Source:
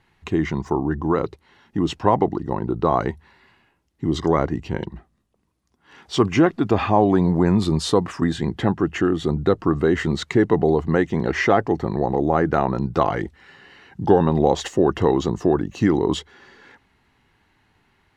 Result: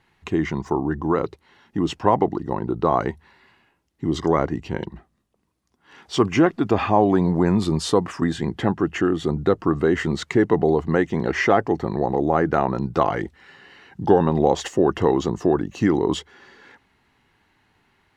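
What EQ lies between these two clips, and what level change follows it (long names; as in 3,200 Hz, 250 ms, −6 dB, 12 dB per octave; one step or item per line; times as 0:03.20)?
low-shelf EQ 120 Hz −5 dB
dynamic equaliser 3,900 Hz, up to −4 dB, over −49 dBFS, Q 5.8
0.0 dB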